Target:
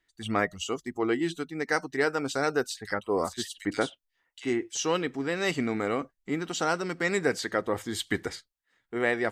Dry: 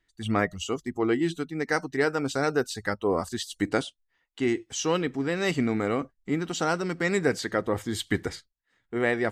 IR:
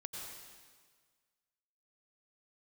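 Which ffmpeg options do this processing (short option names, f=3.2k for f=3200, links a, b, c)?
-filter_complex "[0:a]lowshelf=f=230:g=-8,asettb=1/sr,asplit=3[a][b][c];[a]atrim=end=2.724[d];[b]atrim=start=2.72:end=4.77,asetpts=PTS-STARTPTS,afade=t=in:d=0.004:c=qsin,afade=t=out:st=2.046:d=0.004:c=qsin,acrossover=split=2500[e][f];[e]adelay=50[g];[g][f]amix=inputs=2:normalize=0,atrim=end_sample=90405[h];[c]atrim=start=4.766[i];[d][h]acrossfade=d=0.004:c1=hsin:c2=qsin[j];[j][i]acrossfade=d=0.004:c1=qsin:c2=hsin"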